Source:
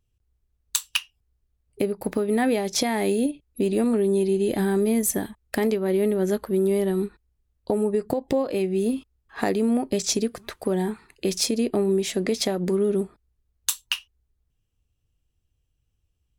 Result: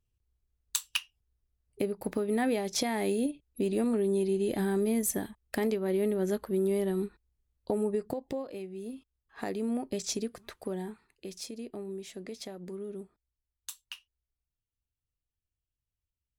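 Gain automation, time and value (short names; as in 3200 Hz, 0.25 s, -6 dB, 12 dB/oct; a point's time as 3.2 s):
7.91 s -6.5 dB
8.75 s -17.5 dB
9.71 s -9.5 dB
10.56 s -9.5 dB
11.3 s -17.5 dB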